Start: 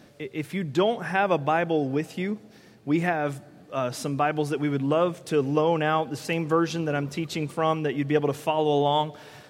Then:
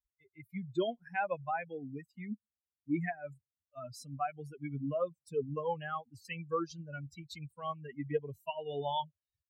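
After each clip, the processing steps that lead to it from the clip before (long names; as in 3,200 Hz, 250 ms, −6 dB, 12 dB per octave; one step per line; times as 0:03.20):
spectral dynamics exaggerated over time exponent 3
high-shelf EQ 5,300 Hz −5.5 dB
level −5.5 dB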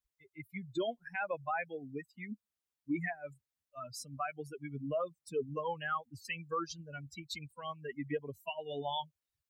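harmonic and percussive parts rebalanced harmonic −10 dB
brickwall limiter −32.5 dBFS, peak gain reduction 8.5 dB
level +6 dB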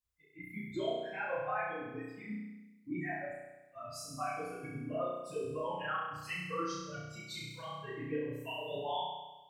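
random phases in long frames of 50 ms
flutter between parallel walls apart 5.7 metres, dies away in 1.1 s
level −3.5 dB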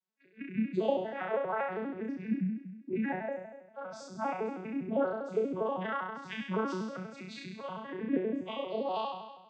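vocoder with an arpeggio as carrier minor triad, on F#3, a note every 80 ms
level +6 dB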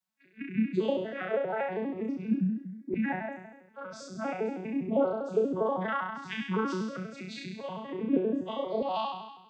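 auto-filter notch saw up 0.34 Hz 390–2,900 Hz
level +4 dB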